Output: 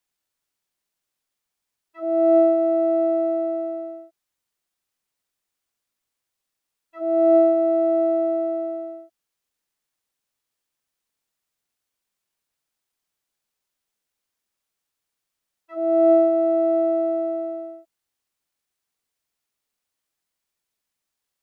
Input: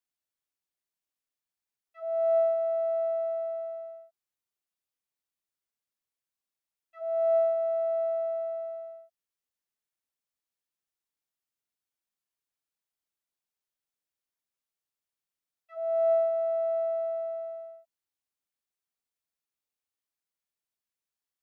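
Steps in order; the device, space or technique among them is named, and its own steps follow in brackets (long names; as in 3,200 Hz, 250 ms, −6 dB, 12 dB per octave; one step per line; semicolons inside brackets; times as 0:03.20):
octave pedal (pitch-shifted copies added −12 semitones −5 dB)
level +7.5 dB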